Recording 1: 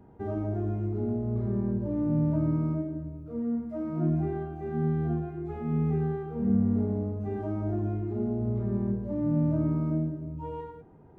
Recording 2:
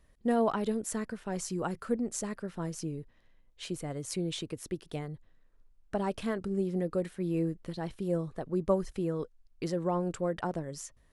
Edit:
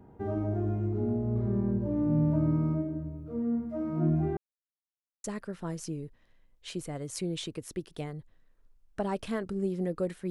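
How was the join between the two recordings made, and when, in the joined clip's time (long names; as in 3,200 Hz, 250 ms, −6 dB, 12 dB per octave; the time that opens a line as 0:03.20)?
recording 1
0:04.37–0:05.24: silence
0:05.24: continue with recording 2 from 0:02.19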